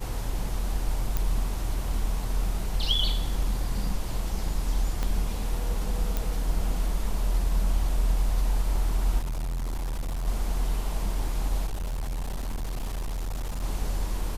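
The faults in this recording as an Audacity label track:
1.170000	1.170000	pop
5.030000	5.030000	pop -16 dBFS
6.170000	6.170000	pop
9.190000	10.280000	clipped -27 dBFS
11.660000	13.640000	clipped -27.5 dBFS

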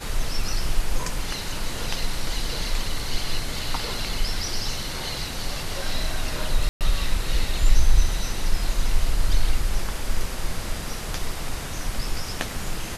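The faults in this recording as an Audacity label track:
6.690000	6.810000	dropout 118 ms

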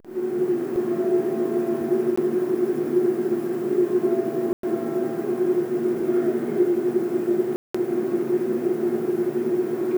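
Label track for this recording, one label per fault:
2.160000	2.170000	dropout
4.530000	4.630000	dropout 103 ms
7.560000	7.750000	dropout 185 ms

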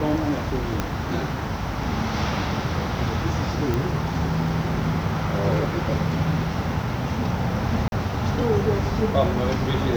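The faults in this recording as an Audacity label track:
0.800000	0.800000	pop -9 dBFS
3.740000	3.740000	pop -11 dBFS
7.880000	7.920000	dropout 41 ms

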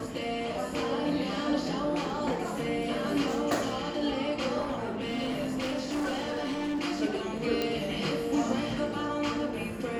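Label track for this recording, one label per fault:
4.600000	6.800000	clipped -27.5 dBFS
7.620000	7.620000	pop -15 dBFS

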